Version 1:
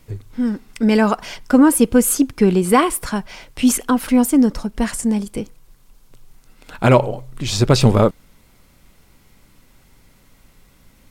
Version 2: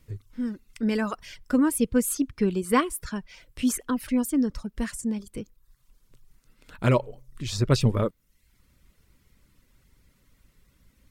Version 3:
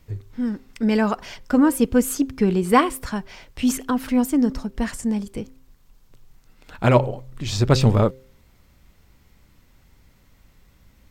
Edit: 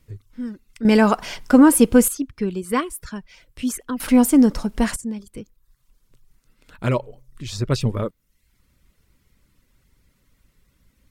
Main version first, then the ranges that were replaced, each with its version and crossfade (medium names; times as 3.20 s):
2
0.85–2.08 s: from 1
4.00–4.96 s: from 1
not used: 3